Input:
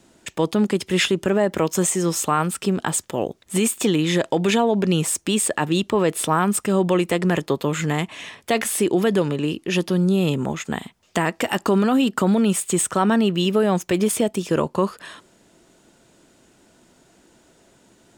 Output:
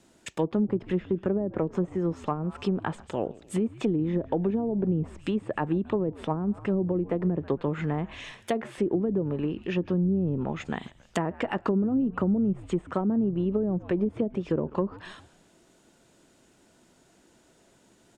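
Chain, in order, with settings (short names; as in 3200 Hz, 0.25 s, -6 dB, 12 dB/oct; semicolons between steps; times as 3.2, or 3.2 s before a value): frequency-shifting echo 0.137 s, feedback 53%, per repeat -92 Hz, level -21 dB; treble ducked by the level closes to 370 Hz, closed at -14.5 dBFS; gain -5.5 dB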